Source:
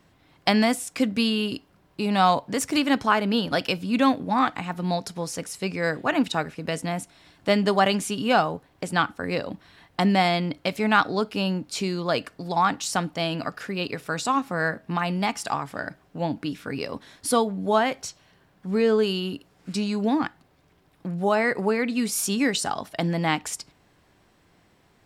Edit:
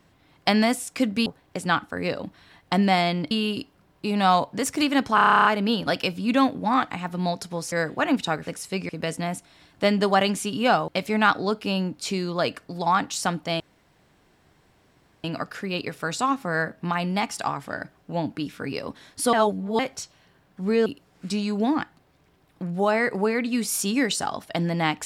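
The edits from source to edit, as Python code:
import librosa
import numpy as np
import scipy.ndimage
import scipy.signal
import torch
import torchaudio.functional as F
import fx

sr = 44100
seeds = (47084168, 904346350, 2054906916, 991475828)

y = fx.edit(x, sr, fx.stutter(start_s=3.1, slice_s=0.03, count=11),
    fx.move(start_s=5.37, length_s=0.42, to_s=6.54),
    fx.move(start_s=8.53, length_s=2.05, to_s=1.26),
    fx.insert_room_tone(at_s=13.3, length_s=1.64),
    fx.reverse_span(start_s=17.39, length_s=0.46),
    fx.cut(start_s=18.92, length_s=0.38), tone=tone)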